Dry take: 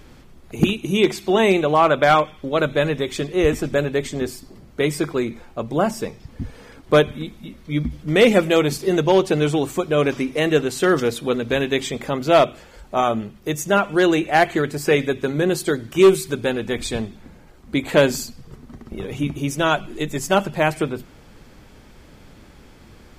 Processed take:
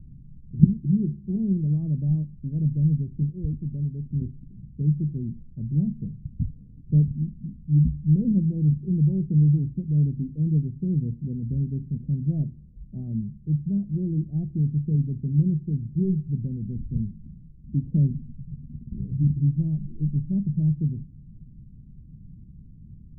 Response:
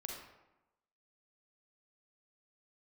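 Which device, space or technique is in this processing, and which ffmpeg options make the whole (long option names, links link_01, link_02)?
the neighbour's flat through the wall: -filter_complex "[0:a]lowpass=frequency=190:width=0.5412,lowpass=frequency=190:width=1.3066,equalizer=frequency=150:width_type=o:width=0.82:gain=7,asettb=1/sr,asplit=3[link_01][link_02][link_03];[link_01]atrim=end=3.304[link_04];[link_02]atrim=start=3.3:end=4.11,asetpts=PTS-STARTPTS,afade=type=in:duration=0.004:curve=qsin,afade=type=out:start_time=0.806:duration=0.004:curve=qsin,lowshelf=frequency=420:gain=-6.5[link_05];[link_03]atrim=start=4.106[link_06];[link_04][link_05]acrossfade=duration=0.004:curve1=hsin:curve2=qsin[link_07];[link_07][link_06]acrossfade=duration=0.004:curve1=qsin:curve2=hsin,volume=1dB"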